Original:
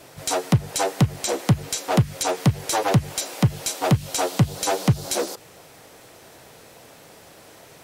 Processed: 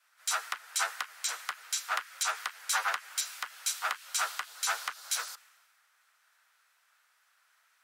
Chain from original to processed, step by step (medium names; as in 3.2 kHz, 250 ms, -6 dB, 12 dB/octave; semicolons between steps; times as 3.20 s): single-diode clipper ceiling -11 dBFS; ladder high-pass 1.2 kHz, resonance 55%; three bands expanded up and down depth 70%; trim +3.5 dB